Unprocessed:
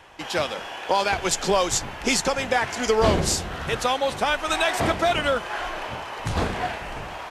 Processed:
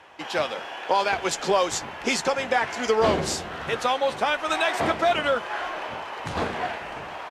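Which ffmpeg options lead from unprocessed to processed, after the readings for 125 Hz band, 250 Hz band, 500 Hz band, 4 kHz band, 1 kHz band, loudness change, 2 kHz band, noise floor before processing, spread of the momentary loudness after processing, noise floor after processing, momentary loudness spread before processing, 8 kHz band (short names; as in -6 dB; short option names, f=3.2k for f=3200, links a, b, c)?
-7.5 dB, -3.0 dB, -0.5 dB, -3.0 dB, 0.0 dB, -1.5 dB, -1.0 dB, -36 dBFS, 10 LU, -37 dBFS, 10 LU, -6.0 dB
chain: -filter_complex "[0:a]highpass=f=270:p=1,aemphasis=mode=reproduction:type=cd,asplit=2[a][b];[b]adelay=13,volume=-13.5dB[c];[a][c]amix=inputs=2:normalize=0"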